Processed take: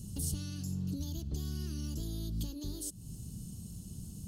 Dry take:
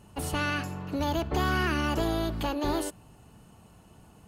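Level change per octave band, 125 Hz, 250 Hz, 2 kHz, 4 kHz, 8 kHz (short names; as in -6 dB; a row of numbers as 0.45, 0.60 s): -3.5, -9.0, -31.0, -11.5, 0.0 dB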